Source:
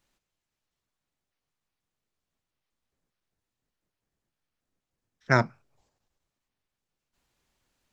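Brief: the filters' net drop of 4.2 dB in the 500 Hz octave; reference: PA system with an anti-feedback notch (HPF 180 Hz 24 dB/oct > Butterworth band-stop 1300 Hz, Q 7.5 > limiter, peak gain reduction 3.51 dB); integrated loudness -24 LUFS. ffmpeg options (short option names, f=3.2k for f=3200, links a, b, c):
-af "highpass=f=180:w=0.5412,highpass=f=180:w=1.3066,asuperstop=centerf=1300:order=8:qfactor=7.5,equalizer=f=500:t=o:g=-6,volume=6.5dB,alimiter=limit=-5.5dB:level=0:latency=1"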